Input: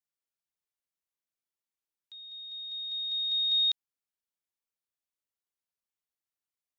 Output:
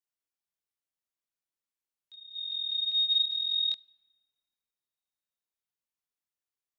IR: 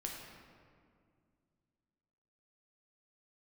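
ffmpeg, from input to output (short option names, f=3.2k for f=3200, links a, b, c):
-filter_complex "[0:a]asettb=1/sr,asplit=3[a][b][c];[a]atrim=end=2.354[d];[b]atrim=start=2.35:end=3.23,asetpts=PTS-STARTPTS,afade=t=in:d=0.004:c=qsin,afade=t=out:st=0.876:d=0.004:c=qsin,equalizer=f=2.7k:t=o:w=1.6:g=13[e];[c]atrim=start=3.226[f];[d][e]acrossfade=d=0.004:c1=hsin:c2=qsin[g];[g][f]acrossfade=d=0.004:c1=qsin:c2=hsin,flanger=delay=22.5:depth=7.6:speed=0.5,asplit=2[h][i];[1:a]atrim=start_sample=2205[j];[i][j]afir=irnorm=-1:irlink=0,volume=-20dB[k];[h][k]amix=inputs=2:normalize=0"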